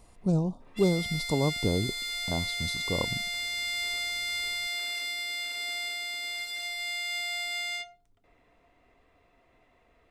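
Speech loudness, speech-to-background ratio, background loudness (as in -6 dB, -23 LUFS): -30.5 LUFS, 1.0 dB, -31.5 LUFS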